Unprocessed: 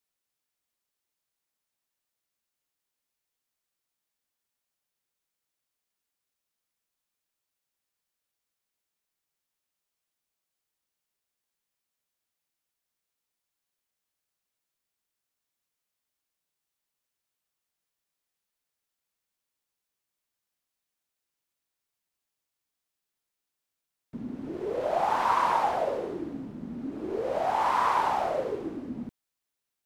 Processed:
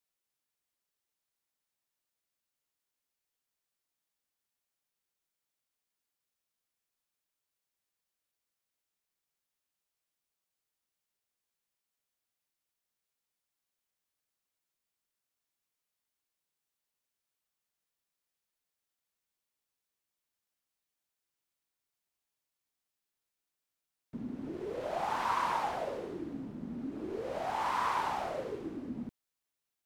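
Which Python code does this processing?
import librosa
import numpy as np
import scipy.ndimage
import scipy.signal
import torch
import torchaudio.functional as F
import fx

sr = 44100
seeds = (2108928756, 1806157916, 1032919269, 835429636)

y = fx.dynamic_eq(x, sr, hz=640.0, q=0.71, threshold_db=-39.0, ratio=4.0, max_db=-6)
y = y * librosa.db_to_amplitude(-3.0)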